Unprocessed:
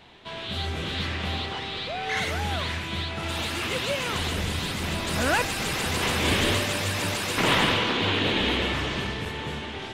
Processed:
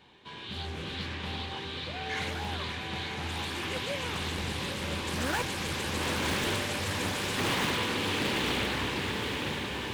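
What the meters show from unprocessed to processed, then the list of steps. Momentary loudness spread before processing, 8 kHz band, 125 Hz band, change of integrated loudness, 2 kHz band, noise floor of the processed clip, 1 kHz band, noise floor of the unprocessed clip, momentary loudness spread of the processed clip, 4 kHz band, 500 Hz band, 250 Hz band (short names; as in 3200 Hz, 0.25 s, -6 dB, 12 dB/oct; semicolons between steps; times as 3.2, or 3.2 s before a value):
9 LU, -5.0 dB, -6.0 dB, -5.5 dB, -5.5 dB, -40 dBFS, -5.5 dB, -36 dBFS, 8 LU, -6.0 dB, -5.5 dB, -4.5 dB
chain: notch comb 670 Hz; in parallel at -6.5 dB: wrapped overs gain 17.5 dB; on the sum: diffused feedback echo 0.931 s, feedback 57%, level -4.5 dB; Doppler distortion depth 0.52 ms; gain -9 dB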